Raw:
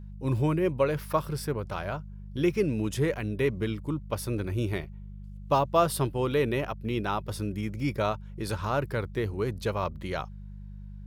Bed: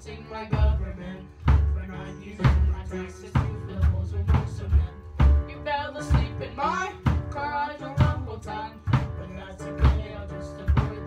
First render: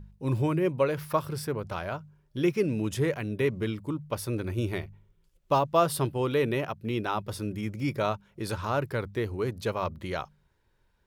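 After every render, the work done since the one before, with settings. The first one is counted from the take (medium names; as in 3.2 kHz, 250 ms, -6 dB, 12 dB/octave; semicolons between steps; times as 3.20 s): de-hum 50 Hz, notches 4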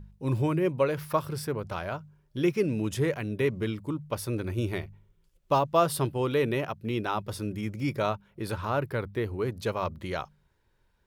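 8.11–9.51 s: peaking EQ 6.4 kHz -6.5 dB 1.1 oct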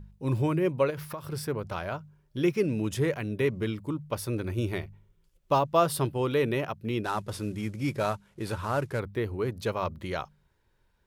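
0.90–1.33 s: compression 12:1, threshold -32 dBFS; 7.04–9.00 s: CVSD coder 64 kbps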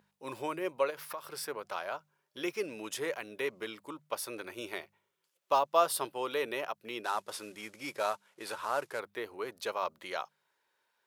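high-pass 640 Hz 12 dB/octave; dynamic bell 2 kHz, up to -3 dB, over -42 dBFS, Q 1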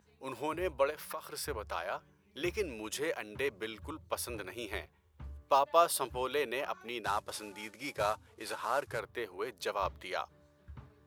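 add bed -28.5 dB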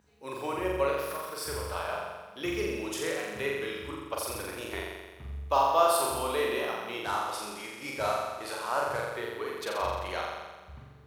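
flutter echo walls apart 7.4 m, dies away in 1.3 s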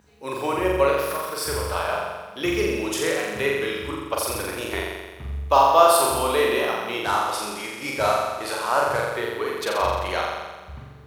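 trim +8.5 dB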